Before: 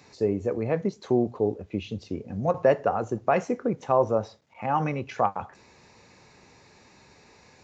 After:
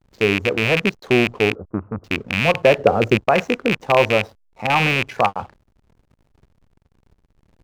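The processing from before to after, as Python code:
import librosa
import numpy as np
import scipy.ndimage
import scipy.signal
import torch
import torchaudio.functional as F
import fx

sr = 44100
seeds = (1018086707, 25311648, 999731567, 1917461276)

y = fx.rattle_buzz(x, sr, strikes_db=-31.0, level_db=-13.0)
y = fx.backlash(y, sr, play_db=-41.0)
y = fx.ellip_lowpass(y, sr, hz=1300.0, order=4, stop_db=60, at=(1.55, 2.04))
y = fx.low_shelf_res(y, sr, hz=640.0, db=6.0, q=1.5, at=(2.78, 3.21))
y = y * librosa.db_to_amplitude(6.0)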